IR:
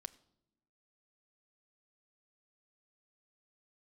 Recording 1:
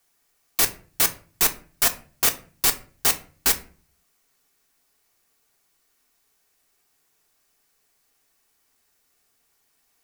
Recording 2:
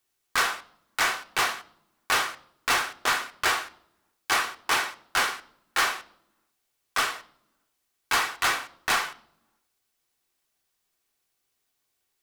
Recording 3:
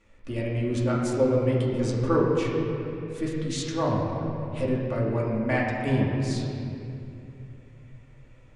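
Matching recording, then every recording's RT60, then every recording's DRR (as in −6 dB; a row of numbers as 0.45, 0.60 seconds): 2; 0.40 s, non-exponential decay, 2.6 s; 4.0, 9.0, −5.5 decibels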